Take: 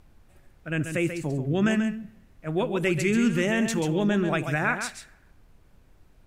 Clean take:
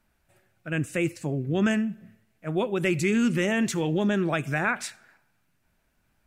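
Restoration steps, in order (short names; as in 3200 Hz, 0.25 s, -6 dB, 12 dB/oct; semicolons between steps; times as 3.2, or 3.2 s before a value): expander -48 dBFS, range -21 dB; inverse comb 0.137 s -8 dB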